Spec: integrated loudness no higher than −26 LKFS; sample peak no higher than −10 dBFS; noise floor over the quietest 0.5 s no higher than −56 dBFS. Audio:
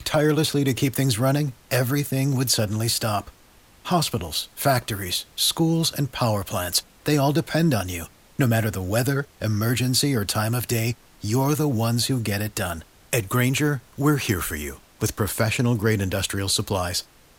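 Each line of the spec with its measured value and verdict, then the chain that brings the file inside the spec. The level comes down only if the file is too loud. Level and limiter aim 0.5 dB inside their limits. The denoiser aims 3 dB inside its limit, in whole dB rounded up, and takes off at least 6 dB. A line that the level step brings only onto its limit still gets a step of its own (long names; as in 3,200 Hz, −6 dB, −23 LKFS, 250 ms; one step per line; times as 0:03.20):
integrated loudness −23.0 LKFS: out of spec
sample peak −8.0 dBFS: out of spec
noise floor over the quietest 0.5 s −53 dBFS: out of spec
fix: level −3.5 dB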